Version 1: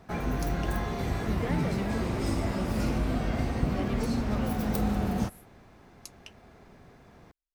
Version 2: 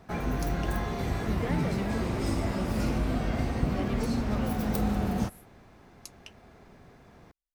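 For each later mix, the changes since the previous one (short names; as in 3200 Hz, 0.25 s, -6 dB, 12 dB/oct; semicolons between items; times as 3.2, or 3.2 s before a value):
none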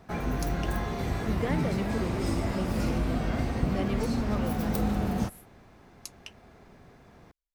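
speech +3.5 dB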